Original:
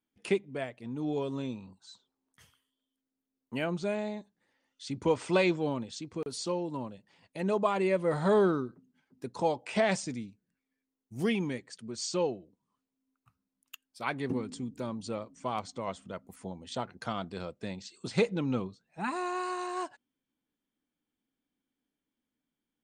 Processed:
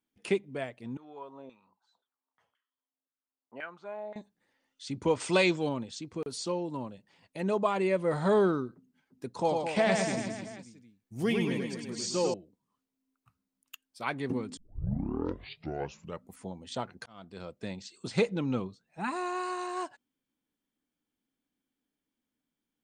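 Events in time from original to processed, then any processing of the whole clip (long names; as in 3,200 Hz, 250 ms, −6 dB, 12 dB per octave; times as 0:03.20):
0:00.97–0:04.16: auto-filter band-pass saw down 1.9 Hz 610–1,700 Hz
0:05.20–0:05.69: high-shelf EQ 2,900 Hz +9 dB
0:09.31–0:12.34: reverse bouncing-ball delay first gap 100 ms, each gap 1.15×, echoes 5
0:14.57: tape start 1.73 s
0:17.06–0:17.63: fade in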